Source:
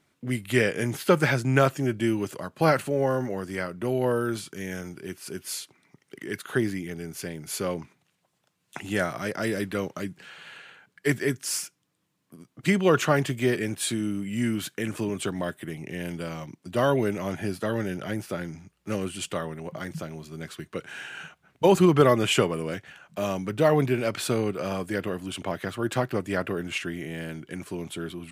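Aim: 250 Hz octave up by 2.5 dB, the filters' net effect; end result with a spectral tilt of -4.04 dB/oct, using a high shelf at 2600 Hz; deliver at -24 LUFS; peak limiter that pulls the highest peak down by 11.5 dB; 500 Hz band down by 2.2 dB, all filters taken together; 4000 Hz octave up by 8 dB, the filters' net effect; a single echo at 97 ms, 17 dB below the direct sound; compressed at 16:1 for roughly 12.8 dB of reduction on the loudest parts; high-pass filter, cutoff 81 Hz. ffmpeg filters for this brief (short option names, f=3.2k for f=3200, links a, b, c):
-af "highpass=81,equalizer=f=250:t=o:g=5,equalizer=f=500:t=o:g=-5,highshelf=f=2.6k:g=7.5,equalizer=f=4k:t=o:g=4.5,acompressor=threshold=-26dB:ratio=16,alimiter=level_in=0.5dB:limit=-24dB:level=0:latency=1,volume=-0.5dB,aecho=1:1:97:0.141,volume=10.5dB"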